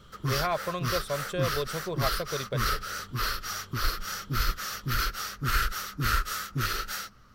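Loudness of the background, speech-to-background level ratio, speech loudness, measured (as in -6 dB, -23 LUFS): -31.0 LUFS, -2.5 dB, -33.5 LUFS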